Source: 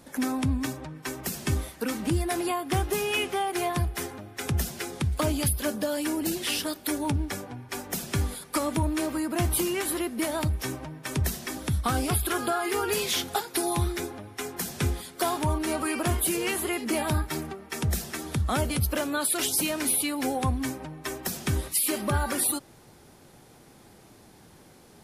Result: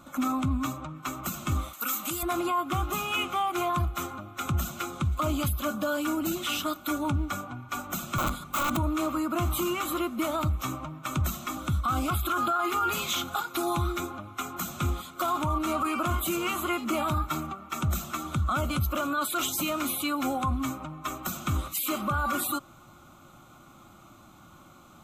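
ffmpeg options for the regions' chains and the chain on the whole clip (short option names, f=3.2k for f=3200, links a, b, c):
-filter_complex "[0:a]asettb=1/sr,asplit=3[a][b][c];[a]atrim=end=1.734[d];[b]atrim=start=1.73:end=2.23,asetpts=PTS-STARTPTS,afade=t=in:d=0.004:c=qsin,afade=t=out:st=0.496:d=0.004:c=qsin,highpass=f=780:p=1,aemphasis=mode=production:type=75fm[e];[c]atrim=start=2.226[f];[d][e]acrossfade=d=0.004:c1=hsin:c2=qsin[g];[g][f]acrossfade=d=0.004:c1=qsin:c2=hsin,asettb=1/sr,asplit=3[h][i][j];[h]atrim=end=8.184[k];[i]atrim=start=8.18:end=8.77,asetpts=PTS-STARTPTS,afade=t=in:d=0.004:c=qsin,afade=t=out:st=0.586:d=0.004:c=qsin,lowshelf=f=330:g=10,aeval=exprs='(mod(10.6*val(0)+1,2)-1)/10.6':c=same[l];[j]atrim=start=8.766[m];[k][l]acrossfade=d=0.004:c1=hsin:c2=qsin[n];[n][m]acrossfade=d=0.004:c1=qsin:c2=hsin,superequalizer=7b=0.251:10b=3.55:11b=0.355:14b=0.355:16b=0.282,alimiter=limit=-19.5dB:level=0:latency=1:release=14"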